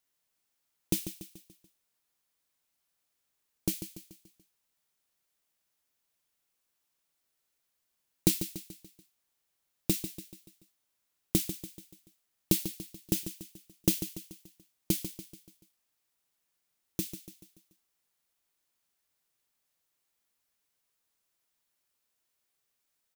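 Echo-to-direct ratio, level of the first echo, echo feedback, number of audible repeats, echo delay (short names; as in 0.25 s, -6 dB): -10.0 dB, -11.0 dB, 48%, 4, 0.144 s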